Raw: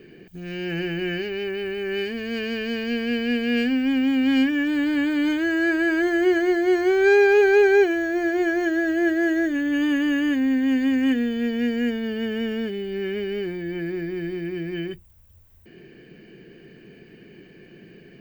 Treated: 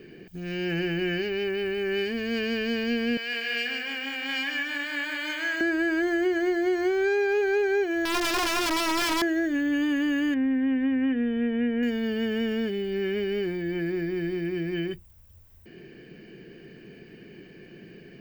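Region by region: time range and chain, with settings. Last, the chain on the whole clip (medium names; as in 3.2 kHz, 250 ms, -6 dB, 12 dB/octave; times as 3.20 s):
3.17–5.61 s: high-pass 960 Hz + feedback delay 152 ms, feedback 41%, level -5 dB
8.05–9.22 s: integer overflow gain 19 dB + treble shelf 6 kHz -8.5 dB
10.34–11.83 s: Butterworth band-stop 5.4 kHz, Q 0.93 + distance through air 210 m
whole clip: peaking EQ 5.2 kHz +4.5 dB 0.24 oct; compression, threshold -22 dBFS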